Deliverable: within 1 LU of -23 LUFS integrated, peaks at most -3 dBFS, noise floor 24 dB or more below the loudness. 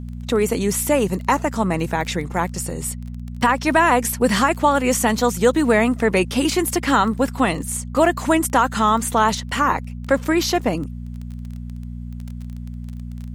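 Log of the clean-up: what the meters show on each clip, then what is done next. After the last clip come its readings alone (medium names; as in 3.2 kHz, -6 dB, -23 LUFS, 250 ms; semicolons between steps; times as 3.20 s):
tick rate 19 per s; hum 60 Hz; highest harmonic 240 Hz; hum level -28 dBFS; loudness -19.5 LUFS; peak level -4.0 dBFS; loudness target -23.0 LUFS
-> de-click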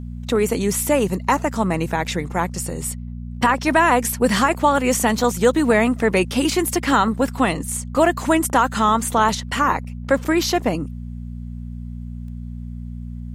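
tick rate 0.15 per s; hum 60 Hz; highest harmonic 240 Hz; hum level -29 dBFS
-> de-hum 60 Hz, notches 4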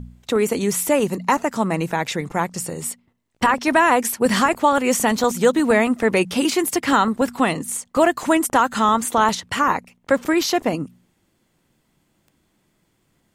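hum not found; loudness -19.5 LUFS; peak level -4.5 dBFS; loudness target -23.0 LUFS
-> trim -3.5 dB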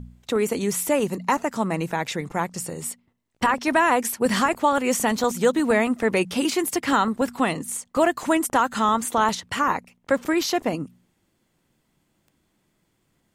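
loudness -23.0 LUFS; peak level -8.0 dBFS; noise floor -71 dBFS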